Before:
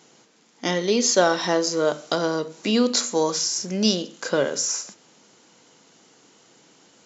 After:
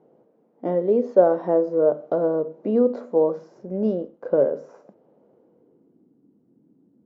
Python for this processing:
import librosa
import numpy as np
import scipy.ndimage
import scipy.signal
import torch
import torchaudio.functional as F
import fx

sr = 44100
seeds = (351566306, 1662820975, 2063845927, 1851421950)

y = fx.law_mismatch(x, sr, coded='A', at=(3.6, 4.41))
y = fx.dynamic_eq(y, sr, hz=1500.0, q=0.95, threshold_db=-39.0, ratio=4.0, max_db=4)
y = fx.filter_sweep_lowpass(y, sr, from_hz=560.0, to_hz=260.0, start_s=5.31, end_s=6.16, q=2.3)
y = y * 10.0 ** (-3.0 / 20.0)